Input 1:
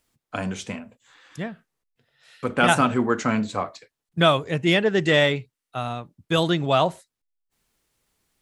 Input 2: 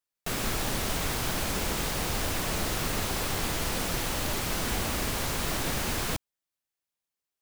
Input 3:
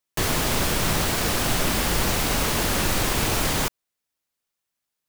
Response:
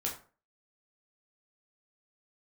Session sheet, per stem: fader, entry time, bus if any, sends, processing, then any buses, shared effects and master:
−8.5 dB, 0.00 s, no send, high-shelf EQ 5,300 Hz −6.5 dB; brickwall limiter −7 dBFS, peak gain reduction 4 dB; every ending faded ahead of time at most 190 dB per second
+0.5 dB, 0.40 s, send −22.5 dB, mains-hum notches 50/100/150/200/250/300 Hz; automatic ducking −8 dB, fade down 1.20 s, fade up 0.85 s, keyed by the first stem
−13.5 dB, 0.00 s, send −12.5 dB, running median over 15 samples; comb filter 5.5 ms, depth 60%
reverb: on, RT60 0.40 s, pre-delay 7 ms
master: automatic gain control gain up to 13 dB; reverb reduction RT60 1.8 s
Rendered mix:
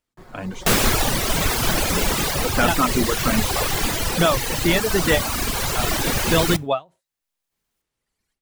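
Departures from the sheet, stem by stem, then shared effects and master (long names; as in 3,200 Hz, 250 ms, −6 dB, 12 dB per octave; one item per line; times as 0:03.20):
stem 2 +0.5 dB → +7.5 dB
stem 3 −13.5 dB → −23.0 dB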